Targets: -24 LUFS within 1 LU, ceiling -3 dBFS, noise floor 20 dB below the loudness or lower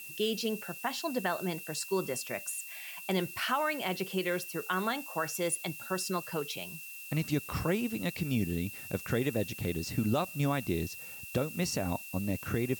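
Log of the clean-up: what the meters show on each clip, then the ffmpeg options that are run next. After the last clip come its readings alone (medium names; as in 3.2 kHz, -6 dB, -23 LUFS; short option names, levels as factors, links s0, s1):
steady tone 2.7 kHz; tone level -46 dBFS; noise floor -45 dBFS; noise floor target -54 dBFS; loudness -33.5 LUFS; peak level -17.5 dBFS; loudness target -24.0 LUFS
-> -af "bandreject=f=2700:w=30"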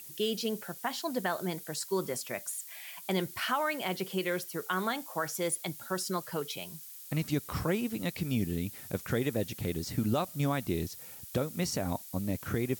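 steady tone not found; noise floor -48 dBFS; noise floor target -54 dBFS
-> -af "afftdn=nr=6:nf=-48"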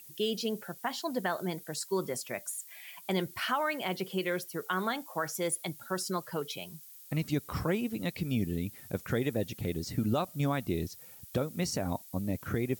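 noise floor -52 dBFS; noise floor target -54 dBFS
-> -af "afftdn=nr=6:nf=-52"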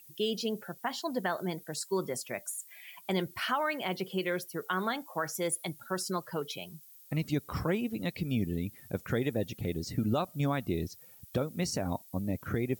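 noise floor -55 dBFS; loudness -34.0 LUFS; peak level -18.5 dBFS; loudness target -24.0 LUFS
-> -af "volume=3.16"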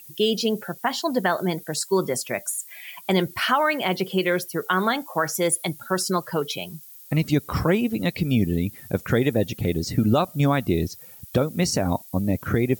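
loudness -24.0 LUFS; peak level -8.5 dBFS; noise floor -45 dBFS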